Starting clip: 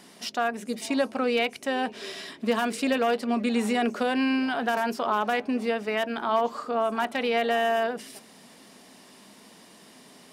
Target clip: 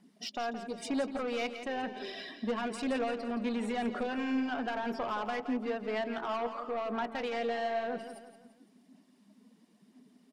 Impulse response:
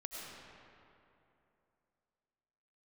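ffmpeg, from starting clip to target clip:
-filter_complex "[0:a]afftdn=nr=20:nf=-41,asplit=2[s0][s1];[s1]acompressor=threshold=0.0158:ratio=6,volume=1.12[s2];[s0][s2]amix=inputs=2:normalize=0,highshelf=f=4000:g=-2.5,asoftclip=type=tanh:threshold=0.0891,aphaser=in_gain=1:out_gain=1:delay=4.1:decay=0.29:speed=1:type=sinusoidal,asplit=2[s3][s4];[s4]aecho=0:1:170|340|510|680:0.299|0.125|0.0527|0.0221[s5];[s3][s5]amix=inputs=2:normalize=0,volume=0.398"

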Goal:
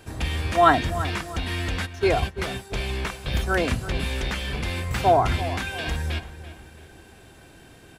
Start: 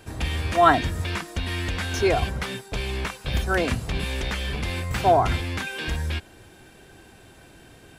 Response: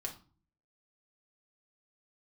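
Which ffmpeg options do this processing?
-filter_complex "[0:a]asplit=3[s0][s1][s2];[s0]afade=t=out:st=1.85:d=0.02[s3];[s1]agate=range=0.1:threshold=0.0631:ratio=16:detection=peak,afade=t=in:st=1.85:d=0.02,afade=t=out:st=2.37:d=0.02[s4];[s2]afade=t=in:st=2.37:d=0.02[s5];[s3][s4][s5]amix=inputs=3:normalize=0,asplit=2[s6][s7];[s7]adelay=338,lowpass=f=3300:p=1,volume=0.211,asplit=2[s8][s9];[s9]adelay=338,lowpass=f=3300:p=1,volume=0.43,asplit=2[s10][s11];[s11]adelay=338,lowpass=f=3300:p=1,volume=0.43,asplit=2[s12][s13];[s13]adelay=338,lowpass=f=3300:p=1,volume=0.43[s14];[s6][s8][s10][s12][s14]amix=inputs=5:normalize=0"

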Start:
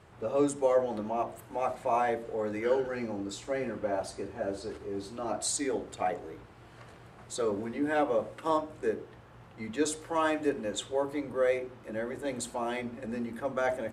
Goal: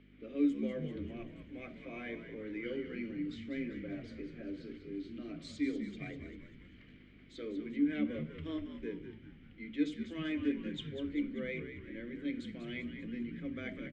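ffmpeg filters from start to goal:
-filter_complex "[0:a]asplit=3[s0][s1][s2];[s0]bandpass=f=270:t=q:w=8,volume=1[s3];[s1]bandpass=f=2290:t=q:w=8,volume=0.501[s4];[s2]bandpass=f=3010:t=q:w=8,volume=0.355[s5];[s3][s4][s5]amix=inputs=3:normalize=0,aeval=exprs='val(0)+0.002*(sin(2*PI*50*n/s)+sin(2*PI*2*50*n/s)/2+sin(2*PI*3*50*n/s)/3+sin(2*PI*4*50*n/s)/4+sin(2*PI*5*50*n/s)/5)':c=same,acrossover=split=220 5900:gain=0.141 1 0.126[s6][s7][s8];[s6][s7][s8]amix=inputs=3:normalize=0,asplit=7[s9][s10][s11][s12][s13][s14][s15];[s10]adelay=196,afreqshift=-68,volume=0.355[s16];[s11]adelay=392,afreqshift=-136,volume=0.191[s17];[s12]adelay=588,afreqshift=-204,volume=0.104[s18];[s13]adelay=784,afreqshift=-272,volume=0.0556[s19];[s14]adelay=980,afreqshift=-340,volume=0.0302[s20];[s15]adelay=1176,afreqshift=-408,volume=0.0162[s21];[s9][s16][s17][s18][s19][s20][s21]amix=inputs=7:normalize=0,volume=2.24"

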